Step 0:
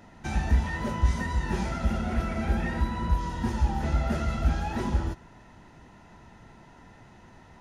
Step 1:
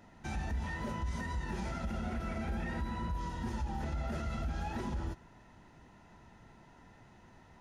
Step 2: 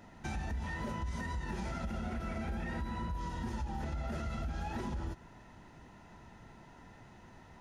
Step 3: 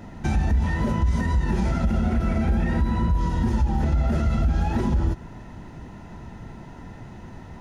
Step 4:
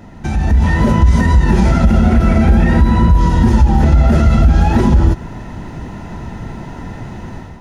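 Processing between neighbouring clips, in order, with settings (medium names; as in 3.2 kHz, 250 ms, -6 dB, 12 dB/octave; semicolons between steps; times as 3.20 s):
peak limiter -22 dBFS, peak gain reduction 10.5 dB; trim -6.5 dB
compression 2.5:1, threshold -39 dBFS, peak gain reduction 5.5 dB; trim +3 dB
bass shelf 460 Hz +9 dB; trim +8.5 dB
level rider gain up to 9.5 dB; trim +3 dB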